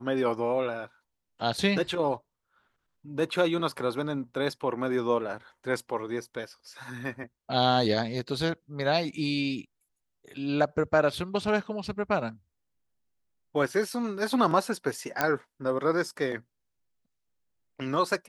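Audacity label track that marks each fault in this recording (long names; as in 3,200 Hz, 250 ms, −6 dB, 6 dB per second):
15.210000	15.210000	click −9 dBFS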